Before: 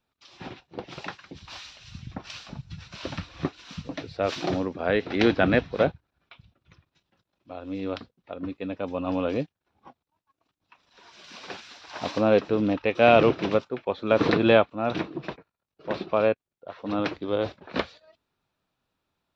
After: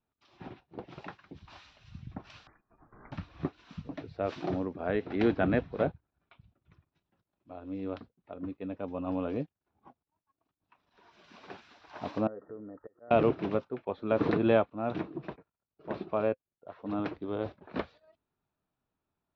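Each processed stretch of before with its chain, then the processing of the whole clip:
2.47–3.12 s: high-pass 1.3 kHz + frequency inversion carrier 2.6 kHz
12.27–13.11 s: slow attack 662 ms + compression 2.5:1, threshold -37 dBFS + rippled Chebyshev low-pass 1.9 kHz, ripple 9 dB
whole clip: low-pass 1.1 kHz 6 dB/octave; band-stop 520 Hz, Q 12; trim -4.5 dB

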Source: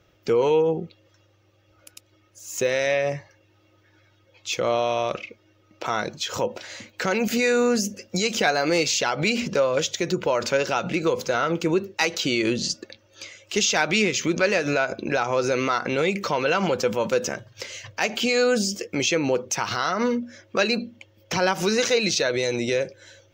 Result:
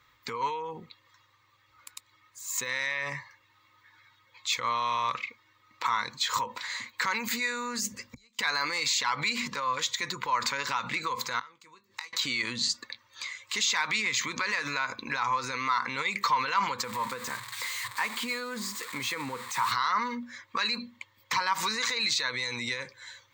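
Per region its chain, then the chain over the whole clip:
7.92–8.39 s: bass shelf 260 Hz +11.5 dB + inverted gate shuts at -23 dBFS, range -39 dB
11.39–12.13 s: peaking EQ 7.6 kHz +6 dB 2.1 oct + inverted gate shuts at -23 dBFS, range -26 dB + doubling 21 ms -12 dB
16.84–19.72 s: zero-crossing glitches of -16 dBFS + low-pass 1.2 kHz 6 dB/octave
whole clip: rippled EQ curve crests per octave 1, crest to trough 10 dB; peak limiter -17.5 dBFS; resonant low shelf 790 Hz -11 dB, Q 3

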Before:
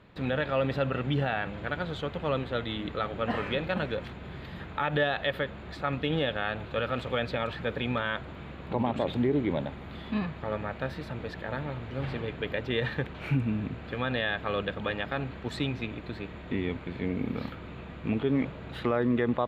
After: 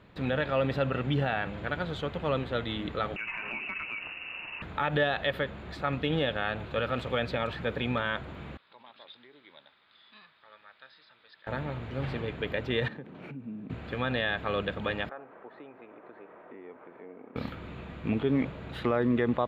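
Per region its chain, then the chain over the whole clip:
3.16–4.62 s: frequency inversion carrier 2.8 kHz + compression 4:1, threshold -33 dBFS
8.57–11.47 s: rippled Chebyshev low-pass 5.1 kHz, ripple 6 dB + differentiator + band-stop 750 Hz, Q 19
12.88–13.70 s: tilt EQ -3 dB/octave + compression 5:1, threshold -30 dBFS + ladder high-pass 160 Hz, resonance 25%
15.09–17.36 s: compression 2:1, threshold -39 dBFS + Butterworth band-pass 800 Hz, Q 0.71 + distance through air 200 m
whole clip: none

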